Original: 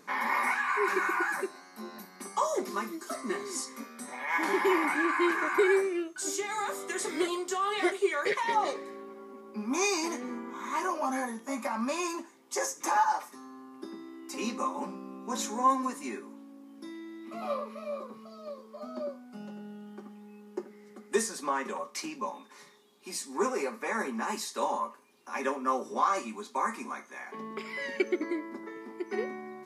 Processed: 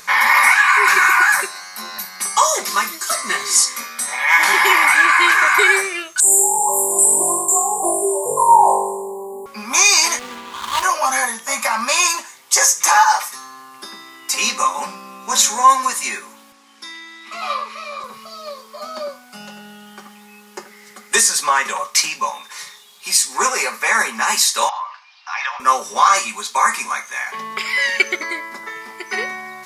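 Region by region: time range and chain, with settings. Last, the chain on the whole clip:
6.2–9.46 brick-wall FIR band-stop 1100–7000 Hz + flutter echo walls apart 3.5 m, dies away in 0.91 s
10.19–10.83 median filter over 25 samples + HPF 64 Hz
16.52–18.04 BPF 270–7600 Hz + bell 580 Hz -8.5 dB 0.53 oct
24.69–25.6 Chebyshev band-pass 700–5200 Hz, order 4 + compressor, threshold -36 dBFS
whole clip: passive tone stack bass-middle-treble 10-0-10; maximiser +25 dB; gain -1 dB

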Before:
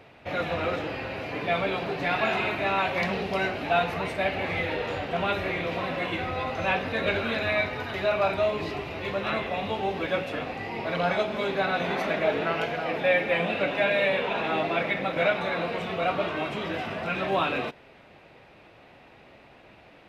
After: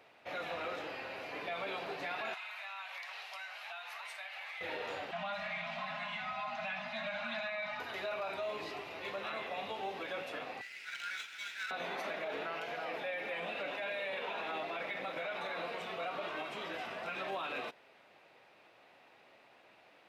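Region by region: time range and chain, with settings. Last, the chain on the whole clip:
2.34–4.61 Bessel high-pass 1200 Hz, order 6 + compressor 10:1, threshold -33 dBFS
5.11–7.8 Chebyshev band-stop 240–600 Hz, order 5 + air absorption 75 m + comb 4.8 ms, depth 85%
10.61–11.71 brick-wall FIR high-pass 1300 Hz + running maximum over 3 samples
whole clip: HPF 950 Hz 6 dB/oct; bell 2500 Hz -3.5 dB 1.8 oct; limiter -26.5 dBFS; gain -4 dB

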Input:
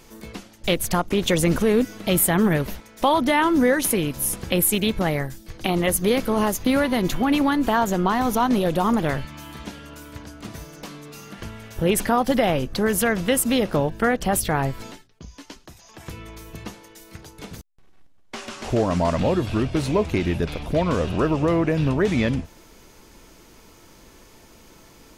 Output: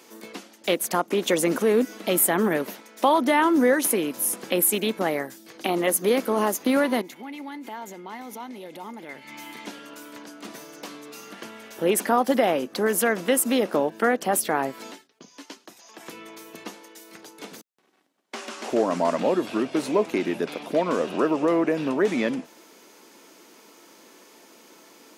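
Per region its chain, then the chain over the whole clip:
7.01–9.66 bell 910 Hz -12 dB 0.91 oct + compressor 20:1, threshold -33 dBFS + small resonant body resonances 880/2100 Hz, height 16 dB, ringing for 30 ms
whole clip: HPF 240 Hz 24 dB/oct; dynamic EQ 3600 Hz, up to -4 dB, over -39 dBFS, Q 0.88

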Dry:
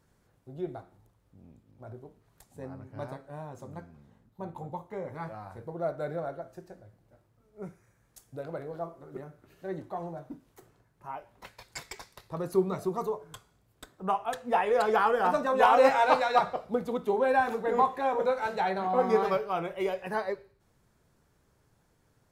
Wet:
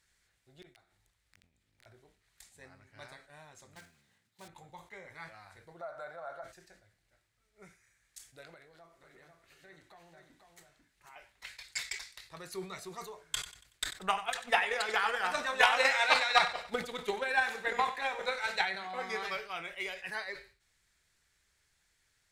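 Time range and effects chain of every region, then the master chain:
0.62–1.86 compressor 10:1, threshold -56 dBFS + wrapped overs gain 51 dB
3.76–4.48 block floating point 5-bit + HPF 95 Hz 24 dB/oct
5.81–6.44 compressor, threshold -40 dBFS + band shelf 880 Hz +15 dB
8.54–11.16 compressor 3:1, threshold -43 dBFS + echo 0.494 s -6 dB
13.18–18.63 transient shaper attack +11 dB, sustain +2 dB + feedback echo 94 ms, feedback 43%, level -14 dB
whole clip: graphic EQ 125/250/500/1000/2000/4000/8000 Hz -10/-10/-7/-6/+11/+8/+9 dB; sustainer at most 140 dB/s; gain -6.5 dB

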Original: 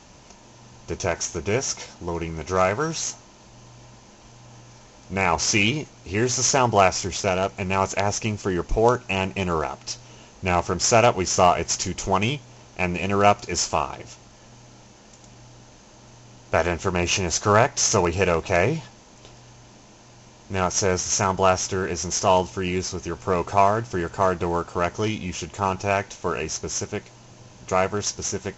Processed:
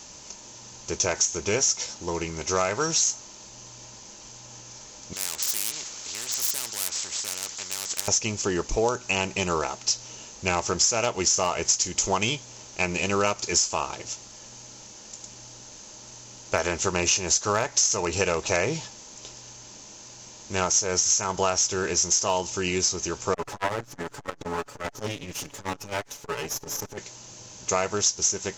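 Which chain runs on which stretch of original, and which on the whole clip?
5.13–8.08 hard clip -16 dBFS + spectral compressor 4:1
23.34–26.98 minimum comb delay 7 ms + high shelf 3900 Hz -11.5 dB + core saturation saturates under 980 Hz
whole clip: tone controls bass -5 dB, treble +13 dB; notch 710 Hz, Q 12; compressor 12:1, threshold -19 dBFS

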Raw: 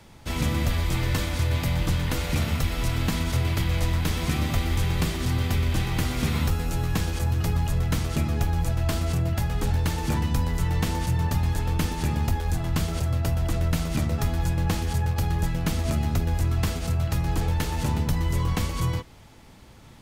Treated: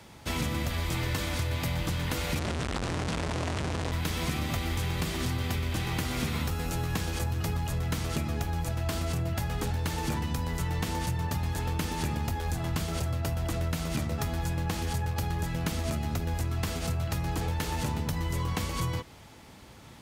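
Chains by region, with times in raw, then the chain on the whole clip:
2.39–3.92 notch comb 270 Hz + Schmitt trigger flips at -33.5 dBFS + LPF 9100 Hz 24 dB/oct
whole clip: HPF 46 Hz; low shelf 220 Hz -4 dB; compressor, threshold -28 dBFS; gain +1.5 dB

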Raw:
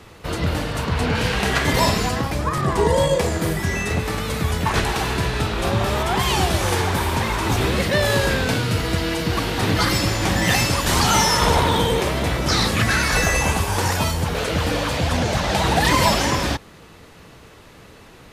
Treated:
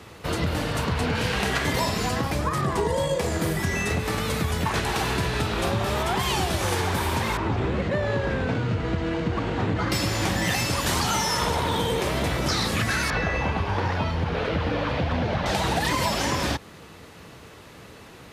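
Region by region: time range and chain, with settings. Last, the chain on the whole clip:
7.37–9.92 CVSD 64 kbps + careless resampling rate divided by 4×, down none, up hold + tape spacing loss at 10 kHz 29 dB
13.1–15.46 delta modulation 64 kbps, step -22.5 dBFS + air absorption 300 m
whole clip: HPF 58 Hz; compressor, threshold -21 dBFS

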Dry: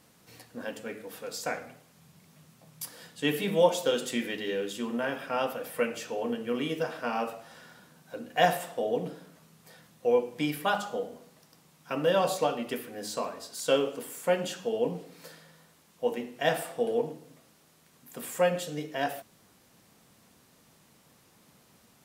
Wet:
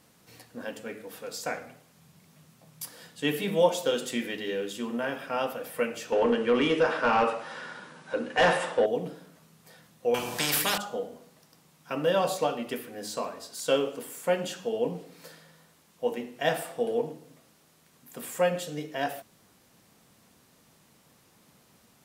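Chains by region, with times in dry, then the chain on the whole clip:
6.12–8.86 notch 700 Hz, Q 5.1 + overdrive pedal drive 22 dB, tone 1500 Hz, clips at -11 dBFS + brick-wall FIR low-pass 11000 Hz
10.14–10.78 notch 2100 Hz, Q 10 + spectral compressor 4:1
whole clip: dry

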